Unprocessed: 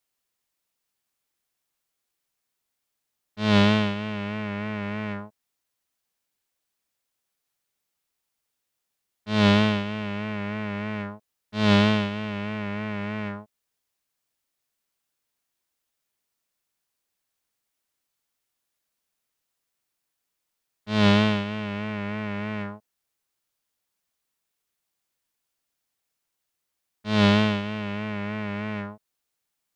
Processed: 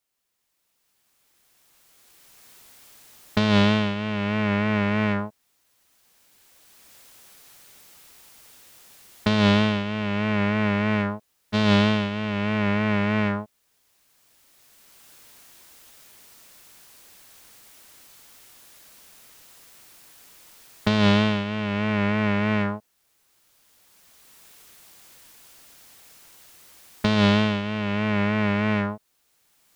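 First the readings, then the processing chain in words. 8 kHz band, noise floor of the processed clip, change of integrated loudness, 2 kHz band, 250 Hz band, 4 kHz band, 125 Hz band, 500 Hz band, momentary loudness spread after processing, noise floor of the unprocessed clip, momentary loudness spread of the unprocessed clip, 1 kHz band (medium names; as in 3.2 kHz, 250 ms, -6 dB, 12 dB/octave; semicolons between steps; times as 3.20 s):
no reading, -70 dBFS, +2.0 dB, +3.5 dB, +2.5 dB, +1.0 dB, +2.5 dB, +2.5 dB, 10 LU, -81 dBFS, 15 LU, +3.0 dB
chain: recorder AGC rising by 12 dB/s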